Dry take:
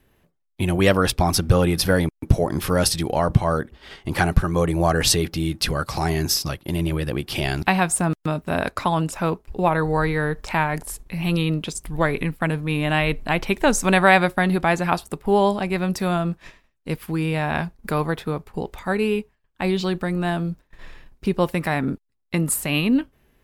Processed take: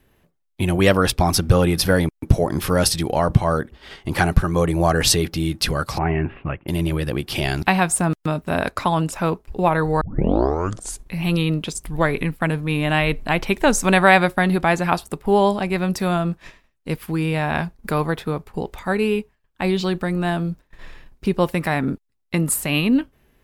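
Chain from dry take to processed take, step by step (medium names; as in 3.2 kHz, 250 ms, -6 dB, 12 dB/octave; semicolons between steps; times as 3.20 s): 5.98–6.68 s: steep low-pass 2.8 kHz 72 dB/octave; 10.01 s: tape start 1.04 s; trim +1.5 dB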